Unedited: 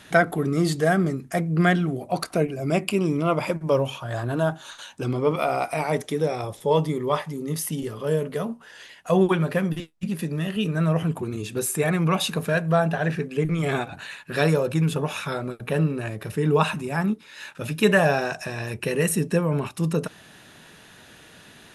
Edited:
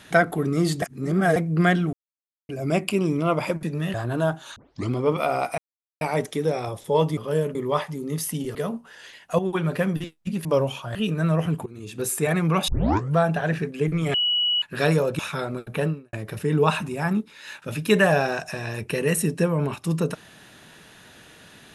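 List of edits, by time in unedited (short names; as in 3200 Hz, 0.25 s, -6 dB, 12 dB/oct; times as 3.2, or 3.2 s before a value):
0.82–1.36 reverse
1.93–2.49 mute
3.63–4.13 swap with 10.21–10.52
4.75 tape start 0.34 s
5.77 insert silence 0.43 s
7.93–8.31 move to 6.93
9.15–9.48 fade in, from -12.5 dB
11.23–11.66 fade in, from -18.5 dB
12.25 tape start 0.48 s
13.71–14.19 bleep 2930 Hz -19 dBFS
14.76–15.12 cut
15.76–16.06 fade out quadratic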